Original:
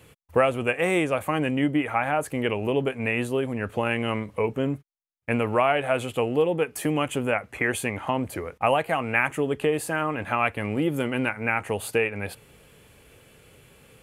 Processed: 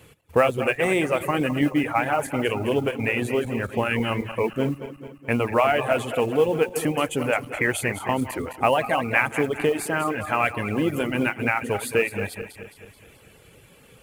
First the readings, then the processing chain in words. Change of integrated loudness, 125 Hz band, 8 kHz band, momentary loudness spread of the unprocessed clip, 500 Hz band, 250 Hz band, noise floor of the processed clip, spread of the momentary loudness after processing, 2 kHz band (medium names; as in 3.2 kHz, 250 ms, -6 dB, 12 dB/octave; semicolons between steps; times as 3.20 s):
+2.0 dB, +1.5 dB, +2.5 dB, 5 LU, +2.0 dB, +1.5 dB, -53 dBFS, 6 LU, +2.0 dB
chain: backward echo that repeats 108 ms, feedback 71%, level -8.5 dB; reverb removal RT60 0.65 s; modulation noise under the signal 31 dB; trim +2 dB